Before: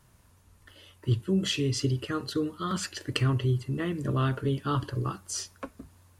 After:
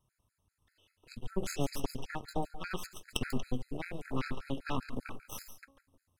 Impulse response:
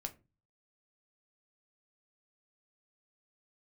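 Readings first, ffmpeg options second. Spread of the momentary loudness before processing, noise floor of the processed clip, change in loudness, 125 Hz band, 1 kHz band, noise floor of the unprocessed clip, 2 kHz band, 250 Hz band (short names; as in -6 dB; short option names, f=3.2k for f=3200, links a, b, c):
8 LU, -84 dBFS, -10.0 dB, -15.0 dB, -6.0 dB, -61 dBFS, -5.0 dB, -9.0 dB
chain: -filter_complex "[0:a]bandreject=f=274.4:t=h:w=4,bandreject=f=548.8:t=h:w=4,bandreject=f=823.2:t=h:w=4,bandreject=f=1.0976k:t=h:w=4,bandreject=f=1.372k:t=h:w=4,bandreject=f=1.6464k:t=h:w=4,bandreject=f=1.9208k:t=h:w=4,bandreject=f=2.1952k:t=h:w=4,bandreject=f=2.4696k:t=h:w=4,bandreject=f=2.744k:t=h:w=4,bandreject=f=3.0184k:t=h:w=4,bandreject=f=3.2928k:t=h:w=4,bandreject=f=3.5672k:t=h:w=4,bandreject=f=3.8416k:t=h:w=4,bandreject=f=4.116k:t=h:w=4,bandreject=f=4.3904k:t=h:w=4,bandreject=f=4.6648k:t=h:w=4,bandreject=f=4.9392k:t=h:w=4,bandreject=f=5.2136k:t=h:w=4,bandreject=f=5.488k:t=h:w=4,bandreject=f=5.7624k:t=h:w=4,bandreject=f=6.0368k:t=h:w=4,bandreject=f=6.3112k:t=h:w=4,bandreject=f=6.5856k:t=h:w=4,bandreject=f=6.86k:t=h:w=4,bandreject=f=7.1344k:t=h:w=4,bandreject=f=7.4088k:t=h:w=4,aeval=exprs='0.335*(cos(1*acos(clip(val(0)/0.335,-1,1)))-cos(1*PI/2))+0.0944*(cos(3*acos(clip(val(0)/0.335,-1,1)))-cos(3*PI/2))+0.0376*(cos(6*acos(clip(val(0)/0.335,-1,1)))-cos(6*PI/2))+0.0596*(cos(8*acos(clip(val(0)/0.335,-1,1)))-cos(8*PI/2))':c=same,asplit=2[a][b];[1:a]atrim=start_sample=2205,highshelf=f=5.2k:g=8,adelay=141[c];[b][c]afir=irnorm=-1:irlink=0,volume=-12.5dB[d];[a][d]amix=inputs=2:normalize=0,afftfilt=real='re*gt(sin(2*PI*5.1*pts/sr)*(1-2*mod(floor(b*sr/1024/1300),2)),0)':imag='im*gt(sin(2*PI*5.1*pts/sr)*(1-2*mod(floor(b*sr/1024/1300),2)),0)':win_size=1024:overlap=0.75,volume=1.5dB"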